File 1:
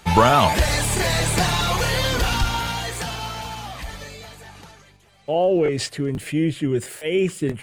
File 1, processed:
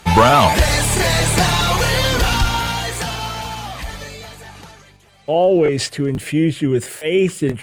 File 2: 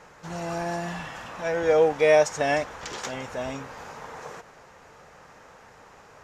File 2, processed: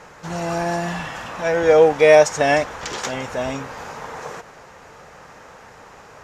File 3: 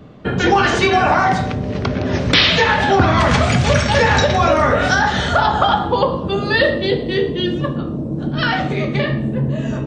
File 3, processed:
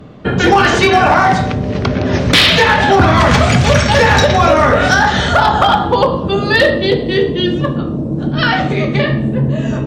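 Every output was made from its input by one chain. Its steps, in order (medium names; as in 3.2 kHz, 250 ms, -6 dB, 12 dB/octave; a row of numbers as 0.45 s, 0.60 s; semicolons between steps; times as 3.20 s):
one-sided clip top -9 dBFS, bottom -6.5 dBFS; peak normalisation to -1.5 dBFS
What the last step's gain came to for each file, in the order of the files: +4.5 dB, +7.0 dB, +4.5 dB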